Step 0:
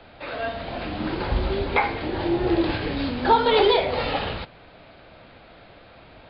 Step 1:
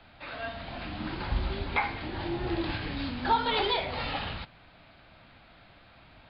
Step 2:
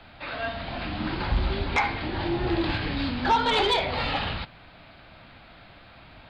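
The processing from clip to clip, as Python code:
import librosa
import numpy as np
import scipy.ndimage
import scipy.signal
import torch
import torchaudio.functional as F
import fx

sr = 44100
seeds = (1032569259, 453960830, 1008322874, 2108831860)

y1 = fx.peak_eq(x, sr, hz=460.0, db=-10.0, octaves=1.0)
y1 = y1 * librosa.db_to_amplitude(-5.0)
y2 = fx.fold_sine(y1, sr, drive_db=4, ceiling_db=-13.5)
y2 = y2 * librosa.db_to_amplitude(-2.0)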